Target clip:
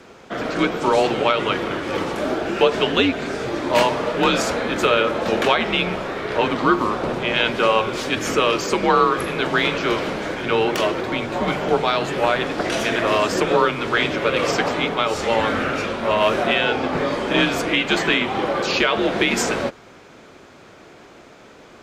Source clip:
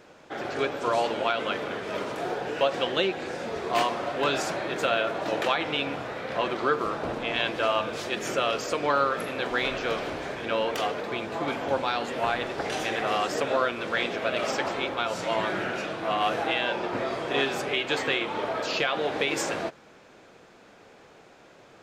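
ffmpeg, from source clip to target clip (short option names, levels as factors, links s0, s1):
-af "highpass=190,afreqshift=-100,volume=2.51"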